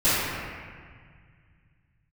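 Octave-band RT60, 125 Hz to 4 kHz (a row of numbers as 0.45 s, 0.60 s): 3.8 s, 2.5 s, 1.8 s, 1.8 s, 2.0 s, 1.4 s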